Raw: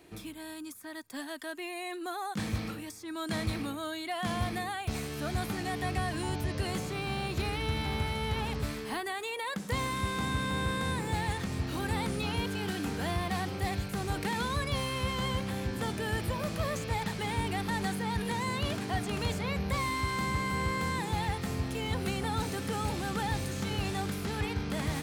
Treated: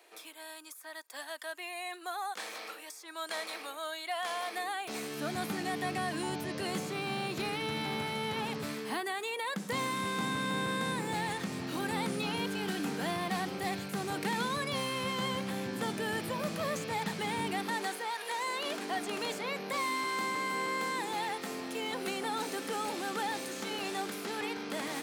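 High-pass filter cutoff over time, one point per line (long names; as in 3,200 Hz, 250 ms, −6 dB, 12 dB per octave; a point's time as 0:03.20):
high-pass filter 24 dB per octave
0:04.44 490 Hz
0:05.27 160 Hz
0:17.48 160 Hz
0:18.19 560 Hz
0:18.85 260 Hz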